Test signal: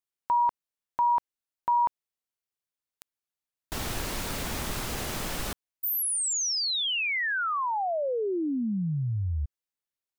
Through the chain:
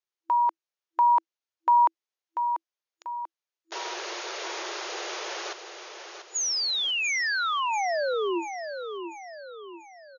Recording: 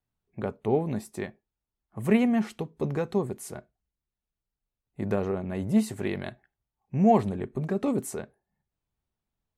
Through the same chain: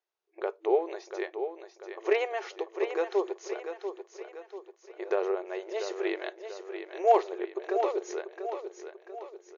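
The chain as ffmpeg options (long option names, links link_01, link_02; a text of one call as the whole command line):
ffmpeg -i in.wav -af "asoftclip=type=hard:threshold=-11.5dB,afftfilt=real='re*between(b*sr/4096,330,6900)':imag='im*between(b*sr/4096,330,6900)':win_size=4096:overlap=0.75,aecho=1:1:690|1380|2070|2760|3450:0.376|0.169|0.0761|0.0342|0.0154,volume=1dB" out.wav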